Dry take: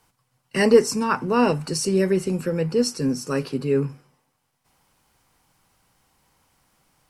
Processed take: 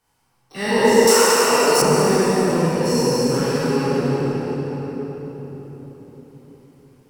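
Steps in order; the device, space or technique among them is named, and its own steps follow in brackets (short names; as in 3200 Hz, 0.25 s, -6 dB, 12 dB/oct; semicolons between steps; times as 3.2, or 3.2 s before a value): spectral trails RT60 2.87 s; shimmer-style reverb (harmoniser +12 st -11 dB; reverb RT60 4.5 s, pre-delay 31 ms, DRR -8 dB); 1.07–1.82 tone controls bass -13 dB, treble +13 dB; gain -10 dB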